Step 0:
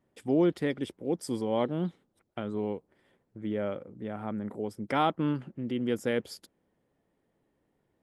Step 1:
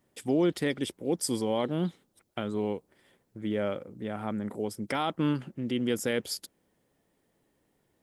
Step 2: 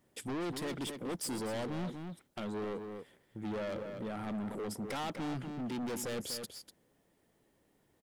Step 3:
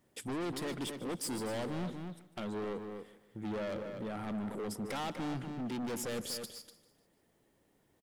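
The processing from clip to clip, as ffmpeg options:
-af "highshelf=f=3.1k:g=11,alimiter=limit=-18.5dB:level=0:latency=1:release=37,volume=1.5dB"
-filter_complex "[0:a]asoftclip=type=hard:threshold=-32.5dB,asplit=2[a][b];[b]adelay=244.9,volume=-8dB,highshelf=f=4k:g=-5.51[c];[a][c]amix=inputs=2:normalize=0,asoftclip=type=tanh:threshold=-33dB"
-af "aecho=1:1:149|298|447|596:0.141|0.0607|0.0261|0.0112"

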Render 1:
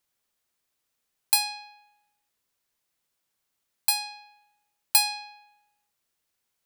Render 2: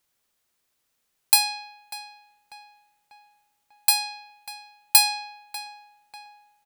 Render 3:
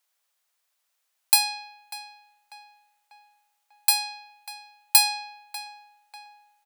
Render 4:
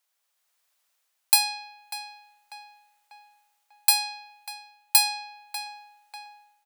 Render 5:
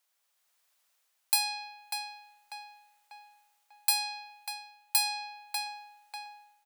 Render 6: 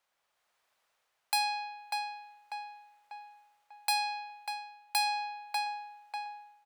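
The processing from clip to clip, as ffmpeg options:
-filter_complex "[0:a]asplit=2[a][b];[b]adelay=594,lowpass=f=2.5k:p=1,volume=-12dB,asplit=2[c][d];[d]adelay=594,lowpass=f=2.5k:p=1,volume=0.54,asplit=2[e][f];[f]adelay=594,lowpass=f=2.5k:p=1,volume=0.54,asplit=2[g][h];[h]adelay=594,lowpass=f=2.5k:p=1,volume=0.54,asplit=2[i][j];[j]adelay=594,lowpass=f=2.5k:p=1,volume=0.54,asplit=2[k][l];[l]adelay=594,lowpass=f=2.5k:p=1,volume=0.54[m];[a][c][e][g][i][k][m]amix=inputs=7:normalize=0,volume=4.5dB"
-af "highpass=f=580:w=0.5412,highpass=f=580:w=1.3066,volume=-1dB"
-af "dynaudnorm=f=160:g=5:m=4.5dB,volume=-1.5dB"
-af "alimiter=limit=-11.5dB:level=0:latency=1:release=300"
-af "lowpass=f=1.4k:p=1,volume=7dB"

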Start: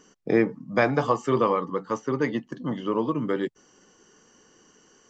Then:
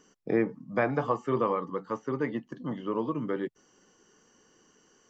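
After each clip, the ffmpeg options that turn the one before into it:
-filter_complex "[0:a]acrossover=split=2700[a][b];[b]acompressor=threshold=-56dB:ratio=4:attack=1:release=60[c];[a][c]amix=inputs=2:normalize=0,volume=-5dB"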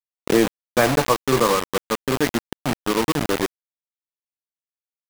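-af "acrusher=bits=4:mix=0:aa=0.000001,volume=8.5dB"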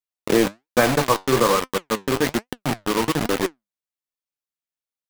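-af "flanger=delay=3.8:depth=6.9:regen=73:speed=1.2:shape=sinusoidal,volume=4.5dB"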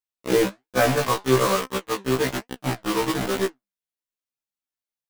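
-af "afftfilt=real='re*1.73*eq(mod(b,3),0)':imag='im*1.73*eq(mod(b,3),0)':win_size=2048:overlap=0.75"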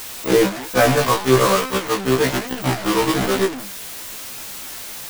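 -af "aeval=exprs='val(0)+0.5*0.0447*sgn(val(0))':c=same,volume=3.5dB"

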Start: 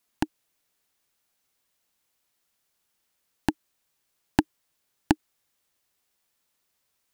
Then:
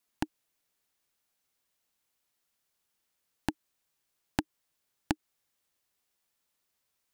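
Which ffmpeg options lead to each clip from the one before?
-af "acompressor=threshold=-21dB:ratio=4,volume=-4.5dB"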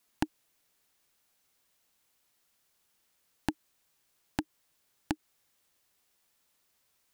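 -af "alimiter=limit=-17dB:level=0:latency=1:release=32,volume=6.5dB"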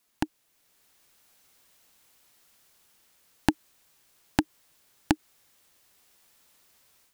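-af "dynaudnorm=f=440:g=3:m=9dB,volume=1.5dB"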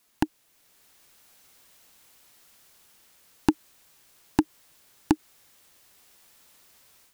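-af "aeval=exprs='0.891*(cos(1*acos(clip(val(0)/0.891,-1,1)))-cos(1*PI/2))+0.355*(cos(5*acos(clip(val(0)/0.891,-1,1)))-cos(5*PI/2))':c=same,volume=-4.5dB"

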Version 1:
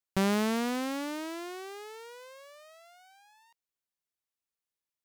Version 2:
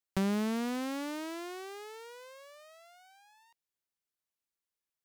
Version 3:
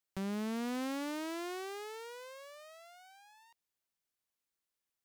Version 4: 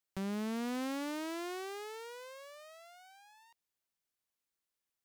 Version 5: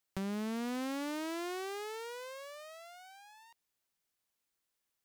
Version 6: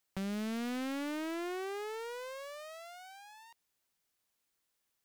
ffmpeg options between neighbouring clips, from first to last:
-filter_complex "[0:a]acrossover=split=340[a][b];[b]acompressor=threshold=-33dB:ratio=4[c];[a][c]amix=inputs=2:normalize=0,volume=-1.5dB"
-af "alimiter=level_in=8dB:limit=-24dB:level=0:latency=1,volume=-8dB,volume=1.5dB"
-af anull
-af "acompressor=threshold=-41dB:ratio=2,volume=4dB"
-af "asoftclip=type=tanh:threshold=-35dB,volume=3dB"

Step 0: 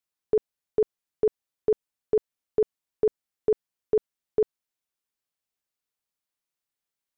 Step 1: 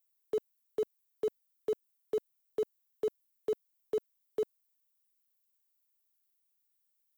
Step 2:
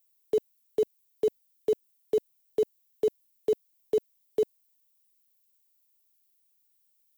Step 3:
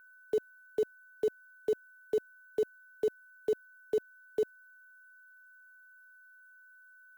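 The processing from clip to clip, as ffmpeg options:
-filter_complex "[0:a]aemphasis=mode=production:type=bsi,acrossover=split=280|610[a][b][c];[a]acrusher=bits=6:mix=0:aa=0.000001[d];[d][b][c]amix=inputs=3:normalize=0,volume=-7.5dB"
-af "equalizer=f=1.3k:w=1.9:g=-14,volume=7.5dB"
-af "aeval=exprs='val(0)+0.00282*sin(2*PI*1500*n/s)':c=same,volume=-4.5dB"

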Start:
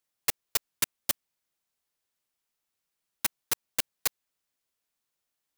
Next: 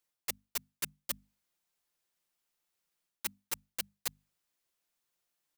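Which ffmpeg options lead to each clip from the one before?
-af "bandreject=f=50:t=h:w=6,bandreject=f=100:t=h:w=6,bandreject=f=150:t=h:w=6,bandreject=f=200:t=h:w=6,bandreject=f=250:t=h:w=6,aecho=1:1:5.7:0.31,areverse,acompressor=threshold=-34dB:ratio=5,areverse"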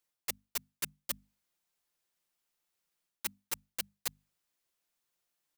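-af anull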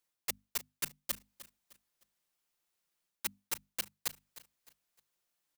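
-af "aecho=1:1:306|612|918:0.15|0.0524|0.0183"

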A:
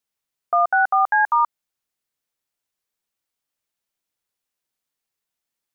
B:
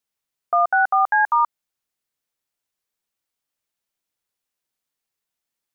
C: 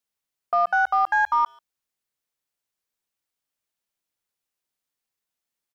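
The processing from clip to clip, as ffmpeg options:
-af anull
-filter_complex "[0:a]aeval=exprs='0.316*(cos(1*acos(clip(val(0)/0.316,-1,1)))-cos(1*PI/2))+0.00891*(cos(2*acos(clip(val(0)/0.316,-1,1)))-cos(2*PI/2))+0.002*(cos(4*acos(clip(val(0)/0.316,-1,1)))-cos(4*PI/2))+0.00708*(cos(5*acos(clip(val(0)/0.316,-1,1)))-cos(5*PI/2))':c=same,asplit=2[a][b];[b]adelay=140,highpass=300,lowpass=3.4k,asoftclip=type=hard:threshold=-19dB,volume=-27dB[c];[a][c]amix=inputs=2:normalize=0,volume=-3dB"

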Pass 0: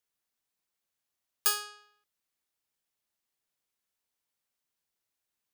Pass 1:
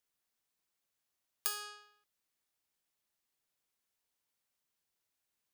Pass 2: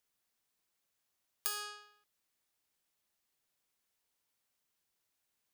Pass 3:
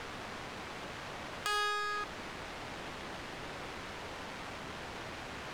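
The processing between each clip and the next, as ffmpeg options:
-af "acompressor=threshold=-32dB:ratio=10"
-af "alimiter=limit=-18.5dB:level=0:latency=1:release=123,volume=2.5dB"
-af "aeval=exprs='val(0)+0.5*0.0282*sgn(val(0))':c=same,adynamicsmooth=sensitivity=5.5:basefreq=1.4k,volume=5dB"

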